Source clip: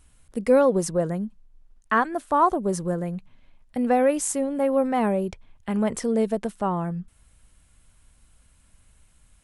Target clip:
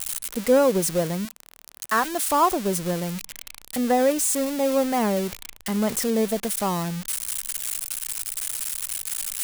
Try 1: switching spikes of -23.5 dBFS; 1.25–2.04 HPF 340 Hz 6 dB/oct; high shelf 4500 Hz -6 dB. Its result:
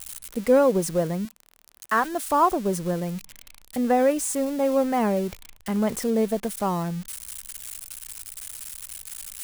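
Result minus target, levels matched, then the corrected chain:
switching spikes: distortion -8 dB
switching spikes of -15 dBFS; 1.25–2.04 HPF 340 Hz 6 dB/oct; high shelf 4500 Hz -6 dB

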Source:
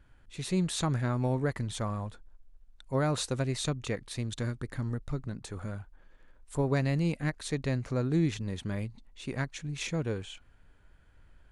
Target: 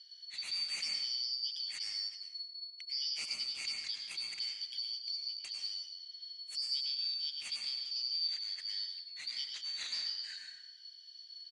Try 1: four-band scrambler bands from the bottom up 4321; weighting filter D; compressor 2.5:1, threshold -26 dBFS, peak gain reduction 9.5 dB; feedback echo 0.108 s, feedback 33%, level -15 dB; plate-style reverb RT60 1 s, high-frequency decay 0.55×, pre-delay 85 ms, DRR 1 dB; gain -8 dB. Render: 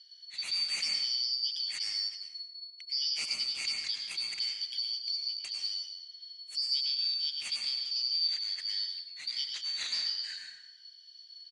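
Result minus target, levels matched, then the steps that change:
compressor: peak gain reduction -5 dB
change: compressor 2.5:1, threshold -34.5 dBFS, peak gain reduction 14.5 dB

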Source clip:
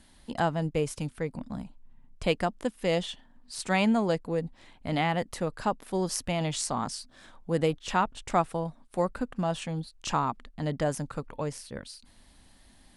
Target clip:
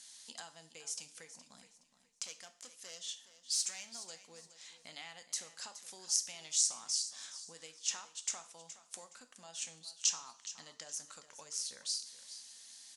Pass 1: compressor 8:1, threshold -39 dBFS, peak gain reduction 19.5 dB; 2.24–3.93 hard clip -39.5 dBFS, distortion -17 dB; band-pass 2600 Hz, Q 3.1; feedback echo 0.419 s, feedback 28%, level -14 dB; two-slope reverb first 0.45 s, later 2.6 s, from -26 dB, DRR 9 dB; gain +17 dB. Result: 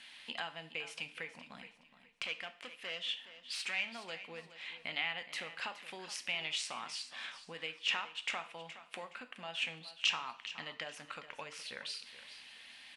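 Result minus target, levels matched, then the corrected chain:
2000 Hz band +16.5 dB
compressor 8:1, threshold -39 dBFS, peak gain reduction 19.5 dB; 2.24–3.93 hard clip -39.5 dBFS, distortion -17 dB; band-pass 6400 Hz, Q 3.1; feedback echo 0.419 s, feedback 28%, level -14 dB; two-slope reverb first 0.45 s, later 2.6 s, from -26 dB, DRR 9 dB; gain +17 dB

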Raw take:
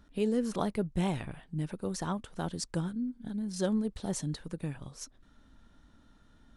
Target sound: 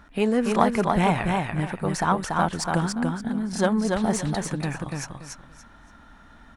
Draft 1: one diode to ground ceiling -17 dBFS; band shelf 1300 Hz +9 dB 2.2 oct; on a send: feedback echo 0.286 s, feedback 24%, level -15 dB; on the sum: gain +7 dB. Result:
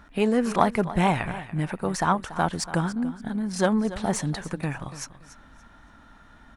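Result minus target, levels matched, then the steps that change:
echo-to-direct -11.5 dB
change: feedback echo 0.286 s, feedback 24%, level -3.5 dB

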